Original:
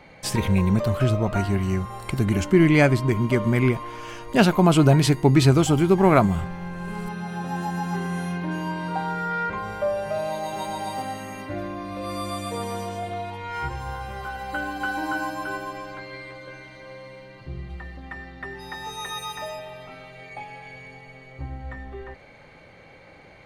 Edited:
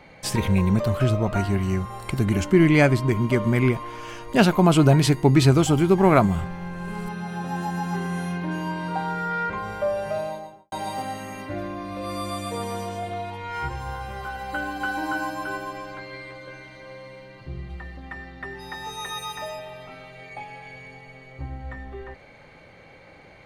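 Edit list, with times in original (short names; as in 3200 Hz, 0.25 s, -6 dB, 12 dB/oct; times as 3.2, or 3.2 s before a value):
10.09–10.72 studio fade out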